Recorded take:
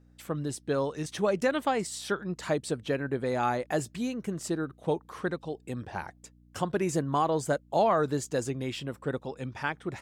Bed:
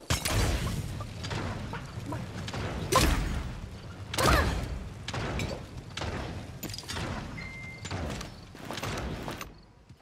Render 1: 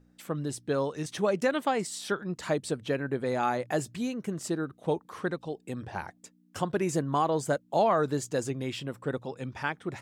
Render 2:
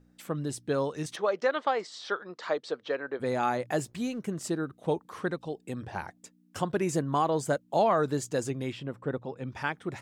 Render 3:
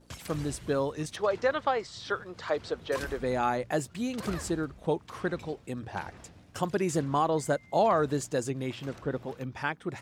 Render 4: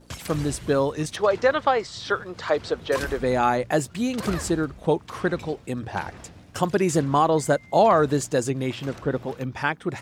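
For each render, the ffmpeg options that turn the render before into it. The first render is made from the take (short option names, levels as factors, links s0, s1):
-af "bandreject=f=60:t=h:w=4,bandreject=f=120:t=h:w=4"
-filter_complex "[0:a]asplit=3[s0][s1][s2];[s0]afade=t=out:st=1.15:d=0.02[s3];[s1]highpass=470,equalizer=f=480:t=q:w=4:g=4,equalizer=f=1200:t=q:w=4:g=4,equalizer=f=2600:t=q:w=4:g=-5,lowpass=f=5200:w=0.5412,lowpass=f=5200:w=1.3066,afade=t=in:st=1.15:d=0.02,afade=t=out:st=3.19:d=0.02[s4];[s2]afade=t=in:st=3.19:d=0.02[s5];[s3][s4][s5]amix=inputs=3:normalize=0,asettb=1/sr,asplit=3[s6][s7][s8];[s6]atrim=end=3.714[s9];[s7]atrim=start=3.71:end=4.19,asetpts=PTS-STARTPTS,afade=t=in:d=0.004:c=qsin,afade=t=out:st=0.476:d=0.004:c=qsin,aeval=exprs='sgn(val(0))*max(abs(val(0))-0.00141,0)':c=same[s10];[s8]atrim=start=4.186[s11];[s9][s10]acrossfade=d=0.004:c1=hsin:c2=qsin[s12];[s12][s11]acrossfade=d=0.004:c1=qsin:c2=hsin,asplit=3[s13][s14][s15];[s13]afade=t=out:st=8.71:d=0.02[s16];[s14]lowpass=f=1800:p=1,afade=t=in:st=8.71:d=0.02,afade=t=out:st=9.46:d=0.02[s17];[s15]afade=t=in:st=9.46:d=0.02[s18];[s16][s17][s18]amix=inputs=3:normalize=0"
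-filter_complex "[1:a]volume=0.168[s0];[0:a][s0]amix=inputs=2:normalize=0"
-af "volume=2.24"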